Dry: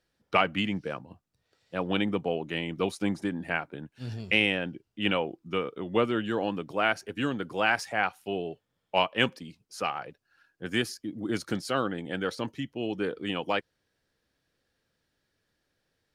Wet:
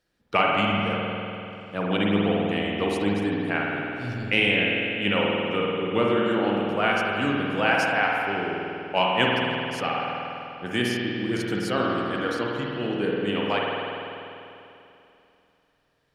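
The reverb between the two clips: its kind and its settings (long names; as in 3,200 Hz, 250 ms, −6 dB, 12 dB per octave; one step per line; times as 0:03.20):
spring reverb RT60 2.9 s, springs 49 ms, chirp 35 ms, DRR −3 dB
level +1 dB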